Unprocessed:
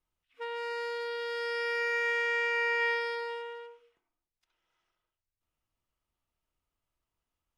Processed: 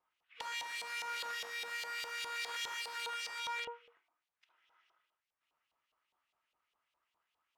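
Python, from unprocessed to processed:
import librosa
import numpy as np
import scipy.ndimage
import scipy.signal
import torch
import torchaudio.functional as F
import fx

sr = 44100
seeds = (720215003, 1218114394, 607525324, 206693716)

y = fx.rider(x, sr, range_db=4, speed_s=0.5)
y = (np.mod(10.0 ** (36.0 / 20.0) * y + 1.0, 2.0) - 1.0) / 10.0 ** (36.0 / 20.0)
y = fx.filter_lfo_bandpass(y, sr, shape='saw_up', hz=4.9, low_hz=770.0, high_hz=3400.0, q=1.8)
y = F.gain(torch.from_numpy(y), 8.0).numpy()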